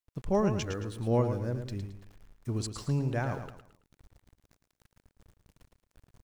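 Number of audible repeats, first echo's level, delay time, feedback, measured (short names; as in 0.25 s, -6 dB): 3, -8.0 dB, 0.11 s, 35%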